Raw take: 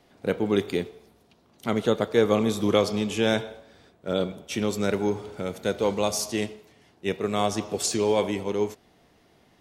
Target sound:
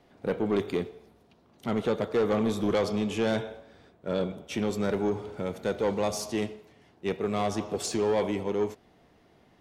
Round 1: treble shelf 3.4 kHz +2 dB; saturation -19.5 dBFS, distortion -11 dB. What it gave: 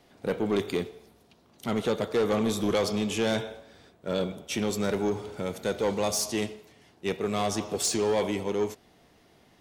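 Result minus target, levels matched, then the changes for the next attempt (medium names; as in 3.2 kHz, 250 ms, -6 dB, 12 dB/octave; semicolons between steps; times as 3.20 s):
8 kHz band +7.0 dB
change: treble shelf 3.4 kHz -8.5 dB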